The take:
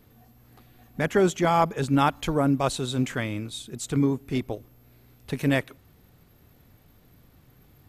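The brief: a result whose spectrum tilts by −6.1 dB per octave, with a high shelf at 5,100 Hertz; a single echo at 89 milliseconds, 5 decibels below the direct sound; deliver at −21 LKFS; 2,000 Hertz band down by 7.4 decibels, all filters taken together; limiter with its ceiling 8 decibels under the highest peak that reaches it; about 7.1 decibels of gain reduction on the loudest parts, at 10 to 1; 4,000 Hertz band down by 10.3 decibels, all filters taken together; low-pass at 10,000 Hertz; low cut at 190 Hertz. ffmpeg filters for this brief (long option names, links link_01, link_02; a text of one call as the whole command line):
ffmpeg -i in.wav -af "highpass=190,lowpass=10000,equalizer=frequency=2000:width_type=o:gain=-7,equalizer=frequency=4000:width_type=o:gain=-7,highshelf=frequency=5100:gain=-8,acompressor=threshold=-24dB:ratio=10,alimiter=limit=-23.5dB:level=0:latency=1,aecho=1:1:89:0.562,volume=13dB" out.wav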